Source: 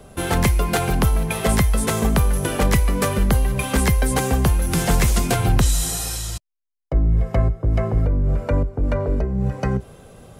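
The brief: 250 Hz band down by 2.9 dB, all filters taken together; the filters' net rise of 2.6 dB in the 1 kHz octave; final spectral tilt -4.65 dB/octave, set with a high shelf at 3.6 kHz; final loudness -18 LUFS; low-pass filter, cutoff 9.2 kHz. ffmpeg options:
-af "lowpass=9200,equalizer=f=250:t=o:g=-4.5,equalizer=f=1000:t=o:g=3.5,highshelf=f=3600:g=3,volume=1.41"

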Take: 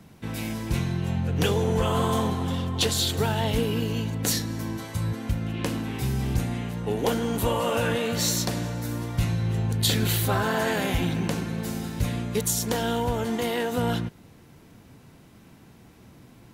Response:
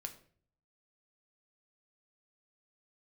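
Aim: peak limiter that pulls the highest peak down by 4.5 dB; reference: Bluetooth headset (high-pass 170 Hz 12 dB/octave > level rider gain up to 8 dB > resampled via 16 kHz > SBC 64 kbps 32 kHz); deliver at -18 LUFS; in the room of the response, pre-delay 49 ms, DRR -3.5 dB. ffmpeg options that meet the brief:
-filter_complex "[0:a]alimiter=limit=0.141:level=0:latency=1,asplit=2[s0][s1];[1:a]atrim=start_sample=2205,adelay=49[s2];[s1][s2]afir=irnorm=-1:irlink=0,volume=2.11[s3];[s0][s3]amix=inputs=2:normalize=0,highpass=170,dynaudnorm=m=2.51,aresample=16000,aresample=44100,volume=1.88" -ar 32000 -c:a sbc -b:a 64k

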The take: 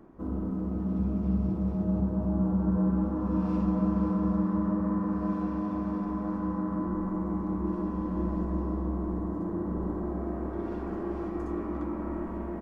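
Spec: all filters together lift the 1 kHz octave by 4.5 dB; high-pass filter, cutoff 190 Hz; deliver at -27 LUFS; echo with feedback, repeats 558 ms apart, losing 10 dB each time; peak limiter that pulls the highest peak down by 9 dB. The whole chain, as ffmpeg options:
-af "highpass=190,equalizer=f=1000:t=o:g=5,alimiter=level_in=1.41:limit=0.0631:level=0:latency=1,volume=0.708,aecho=1:1:558|1116|1674|2232:0.316|0.101|0.0324|0.0104,volume=2.37"

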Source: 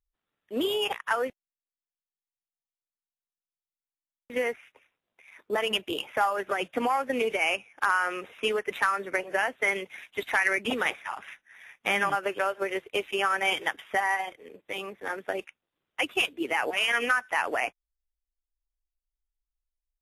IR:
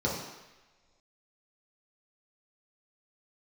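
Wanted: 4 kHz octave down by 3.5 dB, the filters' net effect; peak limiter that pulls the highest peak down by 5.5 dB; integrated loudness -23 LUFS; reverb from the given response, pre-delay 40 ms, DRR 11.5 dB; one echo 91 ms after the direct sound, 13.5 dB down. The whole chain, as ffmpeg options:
-filter_complex "[0:a]equalizer=f=4000:t=o:g=-6,alimiter=limit=0.126:level=0:latency=1,aecho=1:1:91:0.211,asplit=2[s0][s1];[1:a]atrim=start_sample=2205,adelay=40[s2];[s1][s2]afir=irnorm=-1:irlink=0,volume=0.0891[s3];[s0][s3]amix=inputs=2:normalize=0,volume=2.24"

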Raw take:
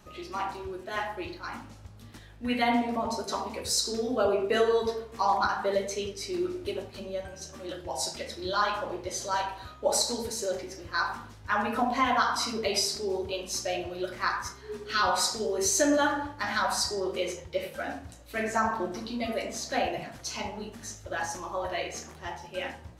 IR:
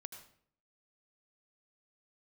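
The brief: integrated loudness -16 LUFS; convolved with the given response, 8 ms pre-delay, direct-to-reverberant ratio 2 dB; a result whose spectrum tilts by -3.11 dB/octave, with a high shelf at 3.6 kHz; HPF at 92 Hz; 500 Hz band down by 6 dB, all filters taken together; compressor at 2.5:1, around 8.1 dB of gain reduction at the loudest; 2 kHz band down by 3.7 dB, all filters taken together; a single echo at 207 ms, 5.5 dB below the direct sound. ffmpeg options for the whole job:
-filter_complex "[0:a]highpass=92,equalizer=f=500:t=o:g=-7.5,equalizer=f=2000:t=o:g=-3,highshelf=f=3600:g=-6,acompressor=threshold=0.0158:ratio=2.5,aecho=1:1:207:0.531,asplit=2[s0][s1];[1:a]atrim=start_sample=2205,adelay=8[s2];[s1][s2]afir=irnorm=-1:irlink=0,volume=1.33[s3];[s0][s3]amix=inputs=2:normalize=0,volume=9.44"

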